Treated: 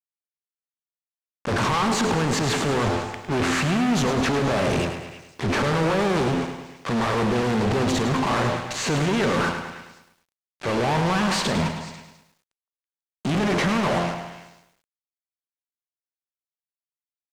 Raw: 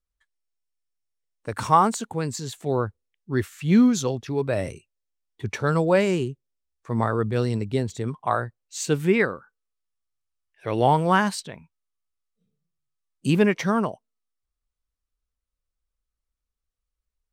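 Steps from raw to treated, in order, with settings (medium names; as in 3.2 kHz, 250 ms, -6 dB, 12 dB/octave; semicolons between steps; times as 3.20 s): spectral levelling over time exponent 0.6; treble shelf 8.3 kHz -10.5 dB; de-hum 86.5 Hz, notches 12; transient shaper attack -7 dB, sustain +11 dB; waveshaping leveller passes 1; compression, threshold -15 dBFS, peak gain reduction 7.5 dB; fuzz box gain 38 dB, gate -39 dBFS; distance through air 62 m; on a send: repeats whose band climbs or falls 164 ms, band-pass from 880 Hz, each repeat 1.4 oct, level -10 dB; on the sum: bit-crushed delay 105 ms, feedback 55%, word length 8-bit, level -9 dB; trim -7.5 dB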